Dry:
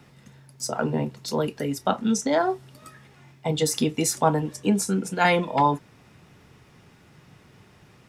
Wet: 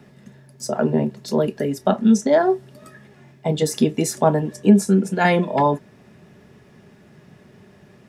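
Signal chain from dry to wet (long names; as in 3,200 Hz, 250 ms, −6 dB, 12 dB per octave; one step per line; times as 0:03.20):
hollow resonant body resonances 210/390/590/1,700 Hz, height 11 dB, ringing for 35 ms
level −1.5 dB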